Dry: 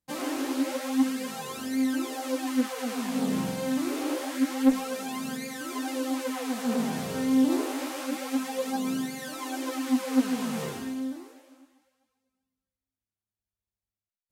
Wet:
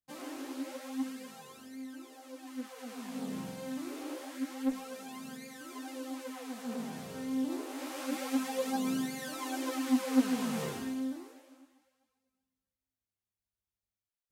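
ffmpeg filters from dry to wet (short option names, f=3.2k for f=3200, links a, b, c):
-af "volume=3.5dB,afade=t=out:st=1.08:d=0.73:silence=0.473151,afade=t=in:st=2.33:d=0.81:silence=0.446684,afade=t=in:st=7.66:d=0.53:silence=0.398107"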